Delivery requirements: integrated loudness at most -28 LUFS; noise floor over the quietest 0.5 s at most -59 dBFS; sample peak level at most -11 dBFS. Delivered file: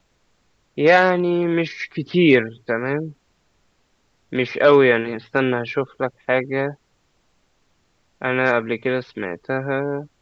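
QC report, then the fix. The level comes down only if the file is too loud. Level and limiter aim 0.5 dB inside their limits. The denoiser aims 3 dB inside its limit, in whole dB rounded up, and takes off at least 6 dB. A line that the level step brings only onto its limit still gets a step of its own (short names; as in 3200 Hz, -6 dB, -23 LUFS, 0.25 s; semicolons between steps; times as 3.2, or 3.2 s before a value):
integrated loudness -20.0 LUFS: fail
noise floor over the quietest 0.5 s -64 dBFS: OK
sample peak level -2.0 dBFS: fail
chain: gain -8.5 dB; limiter -11.5 dBFS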